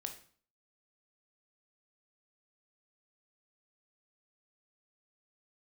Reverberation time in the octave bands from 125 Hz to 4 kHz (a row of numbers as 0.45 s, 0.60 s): 0.55 s, 0.55 s, 0.45 s, 0.50 s, 0.45 s, 0.45 s